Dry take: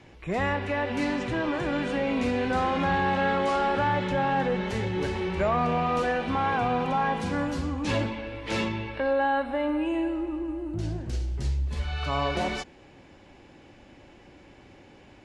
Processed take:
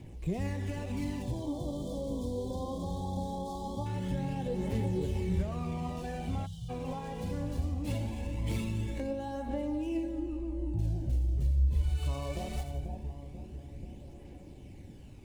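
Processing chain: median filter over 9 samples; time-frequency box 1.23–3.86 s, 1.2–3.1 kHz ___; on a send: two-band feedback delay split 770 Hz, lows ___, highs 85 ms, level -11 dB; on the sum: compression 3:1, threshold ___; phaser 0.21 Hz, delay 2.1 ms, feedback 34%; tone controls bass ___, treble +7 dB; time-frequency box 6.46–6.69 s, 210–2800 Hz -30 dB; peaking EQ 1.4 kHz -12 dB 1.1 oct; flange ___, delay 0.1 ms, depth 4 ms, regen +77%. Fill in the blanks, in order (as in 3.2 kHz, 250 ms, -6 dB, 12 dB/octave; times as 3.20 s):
-28 dB, 487 ms, -32 dBFS, +8 dB, 0.94 Hz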